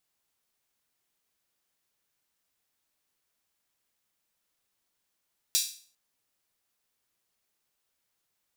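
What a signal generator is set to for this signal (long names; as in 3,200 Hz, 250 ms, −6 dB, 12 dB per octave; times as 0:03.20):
open synth hi-hat length 0.40 s, high-pass 4,300 Hz, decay 0.44 s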